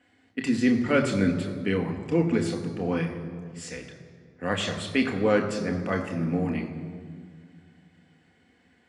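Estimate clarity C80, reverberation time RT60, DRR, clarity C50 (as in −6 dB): 9.5 dB, 2.0 s, 2.5 dB, 8.5 dB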